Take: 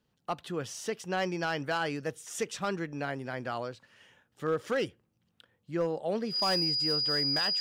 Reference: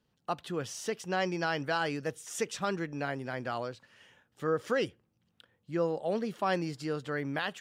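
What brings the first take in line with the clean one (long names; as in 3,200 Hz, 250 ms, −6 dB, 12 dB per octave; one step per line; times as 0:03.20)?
clipped peaks rebuilt −22.5 dBFS
notch filter 4,900 Hz, Q 30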